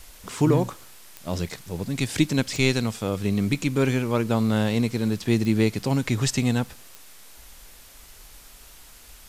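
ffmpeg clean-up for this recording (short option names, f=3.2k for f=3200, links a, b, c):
-af "adeclick=t=4,afwtdn=0.004"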